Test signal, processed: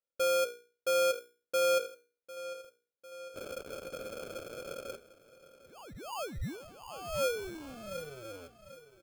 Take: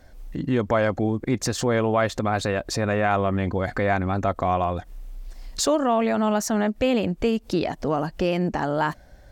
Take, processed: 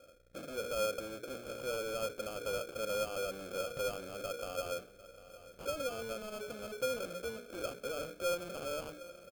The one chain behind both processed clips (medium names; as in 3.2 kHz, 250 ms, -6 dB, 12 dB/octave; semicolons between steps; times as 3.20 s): local Wiener filter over 41 samples; steep low-pass 4.5 kHz 72 dB/octave; hum notches 60/120/180/240/300/360/420/480 Hz; in parallel at -1.5 dB: compressor with a negative ratio -26 dBFS; on the sum: peak limiter -15.5 dBFS; valve stage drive 34 dB, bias 0.4; vowel filter e; sample-and-hold 23×; on a send: feedback delay 750 ms, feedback 58%, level -17.5 dB; on the sum: trim +7.5 dB